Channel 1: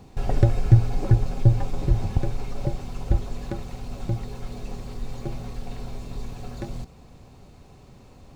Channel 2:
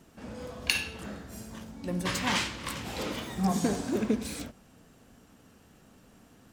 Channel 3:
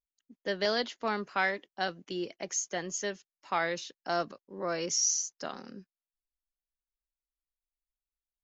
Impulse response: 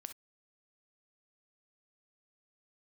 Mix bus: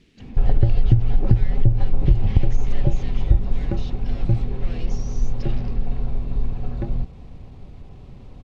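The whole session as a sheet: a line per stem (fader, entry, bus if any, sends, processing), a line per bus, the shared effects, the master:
+0.5 dB, 0.20 s, no bus, no send, tilt EQ -2.5 dB/octave
+1.0 dB, 0.00 s, bus A, no send, tremolo 0.62 Hz, depth 72%
-9.0 dB, 0.00 s, bus A, no send, power-law waveshaper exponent 0.35
bus A: 0.0 dB, high-order bell 920 Hz -13 dB; compression, threshold -37 dBFS, peak gain reduction 13 dB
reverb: none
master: Chebyshev low-pass 3.1 kHz, order 2; compression 12:1, threshold -9 dBFS, peak gain reduction 11 dB

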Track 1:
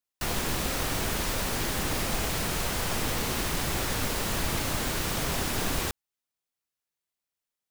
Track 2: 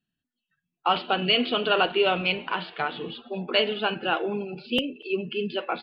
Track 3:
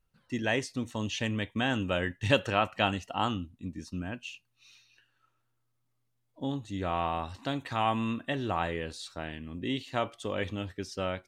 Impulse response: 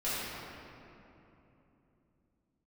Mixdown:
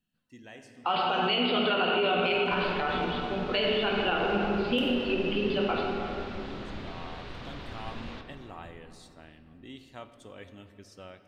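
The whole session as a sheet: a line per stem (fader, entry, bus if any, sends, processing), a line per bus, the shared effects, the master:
-14.0 dB, 2.30 s, send -10.5 dB, Chebyshev low-pass 3.8 kHz, order 3
-4.0 dB, 0.00 s, send -5 dB, none
-15.0 dB, 0.00 s, send -17 dB, treble shelf 8.8 kHz +10 dB; auto duck -15 dB, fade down 1.15 s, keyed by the second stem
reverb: on, RT60 3.1 s, pre-delay 4 ms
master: peak limiter -17.5 dBFS, peak gain reduction 9 dB

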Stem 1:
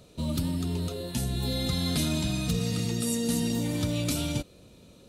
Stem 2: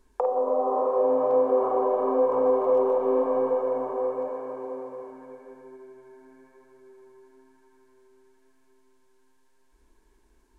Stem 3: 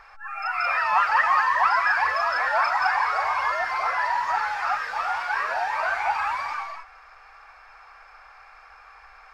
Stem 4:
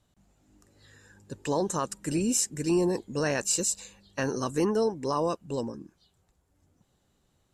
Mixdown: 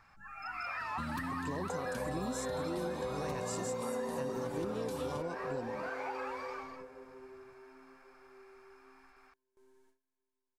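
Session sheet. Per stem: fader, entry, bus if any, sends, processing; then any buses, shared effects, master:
-4.0 dB, 0.80 s, no send, peaking EQ 260 Hz +8 dB 0.28 oct; compression, threshold -27 dBFS, peak gain reduction 7 dB
-6.0 dB, 1.50 s, no send, treble shelf 5.5 kHz +2 dB; gate with hold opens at -50 dBFS
-14.5 dB, 0.00 s, no send, treble shelf 6.8 kHz +7.5 dB
-7.5 dB, 0.00 s, no send, bass shelf 360 Hz +8.5 dB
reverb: none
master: compression 5:1, threshold -35 dBFS, peak gain reduction 13.5 dB

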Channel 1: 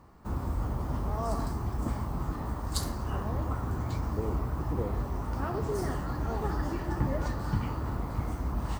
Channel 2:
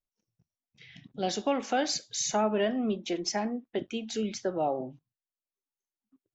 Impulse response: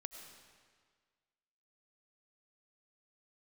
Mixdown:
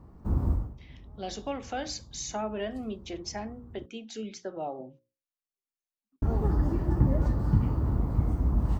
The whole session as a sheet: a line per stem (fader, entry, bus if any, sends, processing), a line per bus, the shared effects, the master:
-1.5 dB, 0.00 s, muted 3.86–6.22 s, no send, tilt shelf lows +8.5 dB, about 680 Hz; auto duck -23 dB, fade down 0.25 s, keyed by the second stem
-6.0 dB, 0.00 s, no send, hum notches 60/120/180/240/300/360/420/480/540 Hz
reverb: none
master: none

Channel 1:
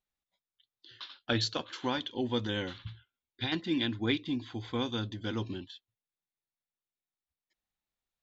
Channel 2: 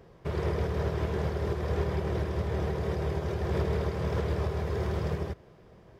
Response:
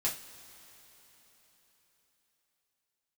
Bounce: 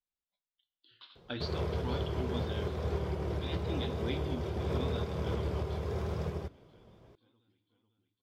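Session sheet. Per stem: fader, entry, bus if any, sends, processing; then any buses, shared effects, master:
-12.0 dB, 0.00 s, send -7.5 dB, echo send -12 dB, steep low-pass 4.8 kHz
-4.5 dB, 1.15 s, no send, no echo send, none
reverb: on, pre-delay 3 ms
echo: feedback delay 494 ms, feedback 56%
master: peaking EQ 1.8 kHz -7 dB 0.24 oct; vibrato 0.86 Hz 49 cents

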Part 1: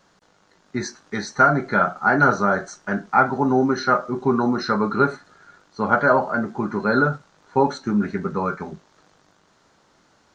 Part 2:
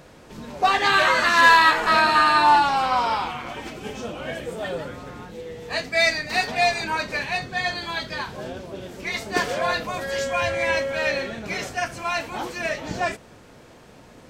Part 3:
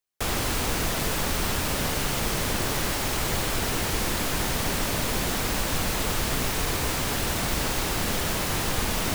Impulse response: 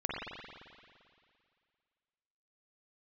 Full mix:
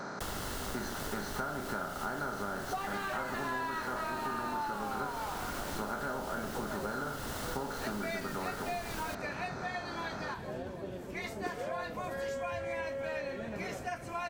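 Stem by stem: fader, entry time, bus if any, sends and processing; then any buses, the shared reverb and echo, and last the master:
-13.5 dB, 0.00 s, no send, no echo send, spectral levelling over time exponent 0.4
-5.0 dB, 2.10 s, no send, echo send -18 dB, peaking EQ 4.1 kHz -9.5 dB 2.4 oct
-3.5 dB, 0.00 s, no send, no echo send, band-stop 2.4 kHz, Q 5.7; auto duck -7 dB, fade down 0.25 s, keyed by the first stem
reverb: none
echo: feedback delay 366 ms, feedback 55%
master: compression 6:1, threshold -34 dBFS, peak gain reduction 16 dB

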